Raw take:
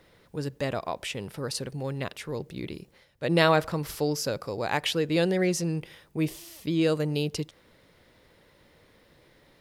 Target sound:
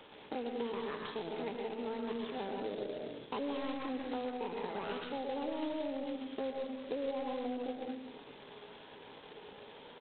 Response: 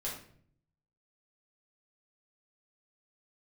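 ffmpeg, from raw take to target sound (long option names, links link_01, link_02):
-filter_complex "[0:a]atempo=0.96,acrossover=split=340|3000[link_01][link_02][link_03];[link_02]acompressor=threshold=-35dB:ratio=6[link_04];[link_01][link_04][link_03]amix=inputs=3:normalize=0,highpass=110,asetrate=74167,aresample=44100,atempo=0.594604,aeval=exprs='(tanh(7.94*val(0)+0.1)-tanh(0.1))/7.94':channel_layout=same,equalizer=frequency=430:width=5.2:gain=12,bandreject=frequency=700:width=18,aecho=1:1:77|154|231|308:0.178|0.0711|0.0285|0.0114,asplit=2[link_05][link_06];[1:a]atrim=start_sample=2205,adelay=116[link_07];[link_06][link_07]afir=irnorm=-1:irlink=0,volume=-3.5dB[link_08];[link_05][link_08]amix=inputs=2:normalize=0,acompressor=threshold=-42dB:ratio=4,volume=3.5dB" -ar 8000 -c:a adpcm_g726 -b:a 16k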